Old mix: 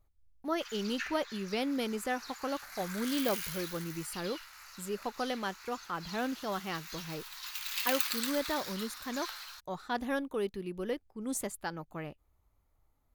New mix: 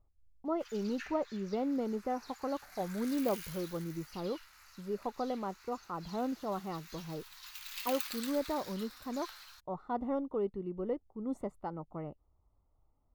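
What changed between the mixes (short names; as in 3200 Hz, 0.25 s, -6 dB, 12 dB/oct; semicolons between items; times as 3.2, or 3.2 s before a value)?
speech: add polynomial smoothing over 65 samples; background -7.5 dB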